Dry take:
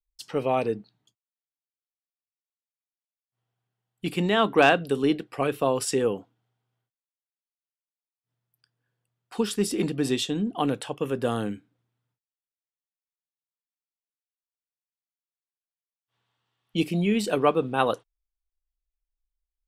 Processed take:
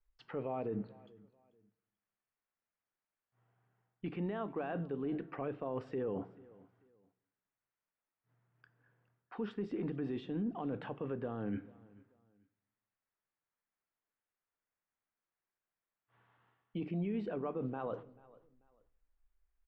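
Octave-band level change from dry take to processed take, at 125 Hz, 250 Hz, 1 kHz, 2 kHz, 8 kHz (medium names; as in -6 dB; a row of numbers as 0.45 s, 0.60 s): -10.5 dB, -11.5 dB, -18.0 dB, -22.0 dB, under -40 dB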